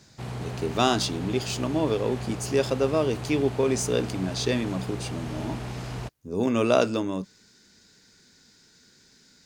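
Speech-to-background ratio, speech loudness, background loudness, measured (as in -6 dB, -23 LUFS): 9.0 dB, -26.5 LUFS, -35.5 LUFS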